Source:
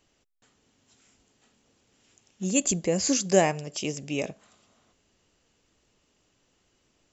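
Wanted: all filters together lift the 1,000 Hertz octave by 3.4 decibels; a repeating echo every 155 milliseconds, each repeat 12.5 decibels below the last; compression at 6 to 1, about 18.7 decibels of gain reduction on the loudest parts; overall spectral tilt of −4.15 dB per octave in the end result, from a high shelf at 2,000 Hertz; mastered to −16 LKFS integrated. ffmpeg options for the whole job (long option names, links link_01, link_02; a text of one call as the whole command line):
ffmpeg -i in.wav -af "equalizer=frequency=1000:width_type=o:gain=6,highshelf=frequency=2000:gain=-4,acompressor=threshold=-34dB:ratio=6,aecho=1:1:155|310|465:0.237|0.0569|0.0137,volume=22dB" out.wav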